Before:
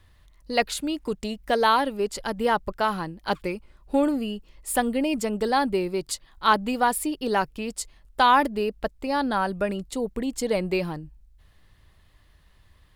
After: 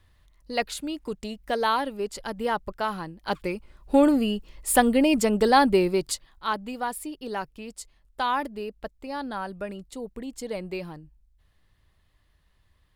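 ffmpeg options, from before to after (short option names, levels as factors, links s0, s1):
-af "volume=1.68,afade=t=in:st=3.17:d=0.99:silence=0.375837,afade=t=out:st=5.87:d=0.58:silence=0.237137"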